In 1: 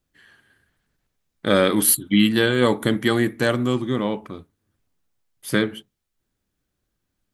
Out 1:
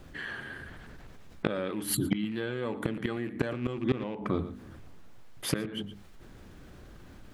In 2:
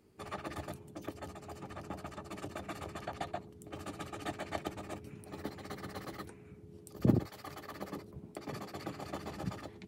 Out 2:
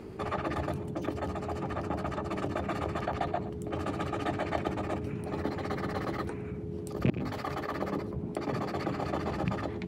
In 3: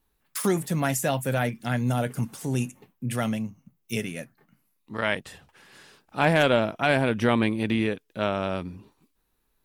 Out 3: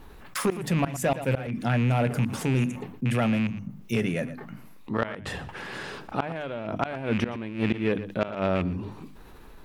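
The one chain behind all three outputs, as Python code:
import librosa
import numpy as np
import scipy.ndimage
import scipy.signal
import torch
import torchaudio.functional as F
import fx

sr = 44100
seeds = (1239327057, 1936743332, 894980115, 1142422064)

y = fx.rattle_buzz(x, sr, strikes_db=-29.0, level_db=-23.0)
y = fx.lowpass(y, sr, hz=1700.0, slope=6)
y = fx.hum_notches(y, sr, base_hz=50, count=6)
y = fx.gate_flip(y, sr, shuts_db=-15.0, range_db=-27)
y = 10.0 ** (-18.0 / 20.0) * np.tanh(y / 10.0 ** (-18.0 / 20.0))
y = y + 10.0 ** (-23.0 / 20.0) * np.pad(y, (int(116 * sr / 1000.0), 0))[:len(y)]
y = fx.env_flatten(y, sr, amount_pct=50)
y = F.gain(torch.from_numpy(y), 2.5).numpy()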